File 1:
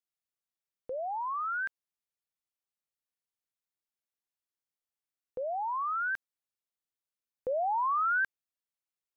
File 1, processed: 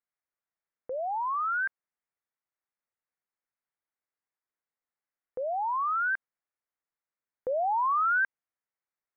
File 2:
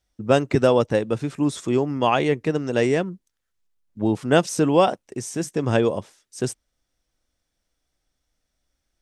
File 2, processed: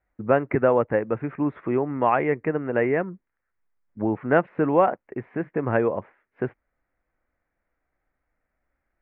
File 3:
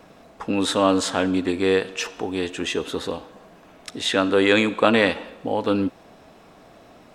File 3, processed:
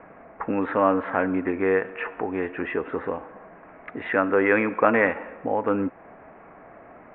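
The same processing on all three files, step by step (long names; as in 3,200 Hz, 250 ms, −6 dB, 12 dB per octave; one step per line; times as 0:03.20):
Butterworth low-pass 2,200 Hz 48 dB per octave
low-shelf EQ 420 Hz −8 dB
in parallel at −1.5 dB: downward compressor, threshold −32 dBFS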